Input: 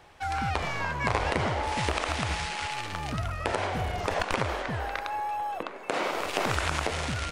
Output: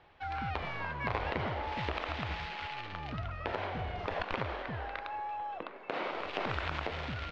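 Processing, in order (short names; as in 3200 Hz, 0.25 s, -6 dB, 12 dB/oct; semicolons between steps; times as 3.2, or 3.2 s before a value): LPF 4000 Hz 24 dB/oct; gain -7 dB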